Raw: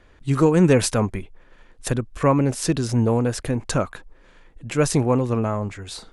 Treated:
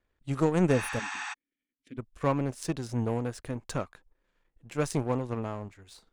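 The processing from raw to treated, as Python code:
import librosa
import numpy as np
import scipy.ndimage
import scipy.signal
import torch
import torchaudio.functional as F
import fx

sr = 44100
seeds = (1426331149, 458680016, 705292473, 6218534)

y = fx.power_curve(x, sr, exponent=1.4)
y = fx.vowel_filter(y, sr, vowel='i', at=(0.98, 1.97), fade=0.02)
y = fx.spec_repair(y, sr, seeds[0], start_s=0.75, length_s=0.56, low_hz=730.0, high_hz=8700.0, source='before')
y = y * librosa.db_to_amplitude(-6.5)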